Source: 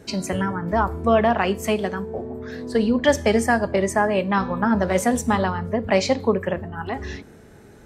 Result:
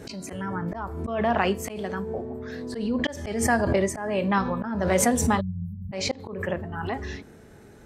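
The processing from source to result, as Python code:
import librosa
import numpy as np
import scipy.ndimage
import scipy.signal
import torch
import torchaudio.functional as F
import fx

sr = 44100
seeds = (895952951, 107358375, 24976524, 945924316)

y = fx.spec_erase(x, sr, start_s=5.4, length_s=0.53, low_hz=210.0, high_hz=11000.0)
y = fx.auto_swell(y, sr, attack_ms=292.0)
y = fx.pre_swell(y, sr, db_per_s=50.0)
y = F.gain(torch.from_numpy(y), -2.5).numpy()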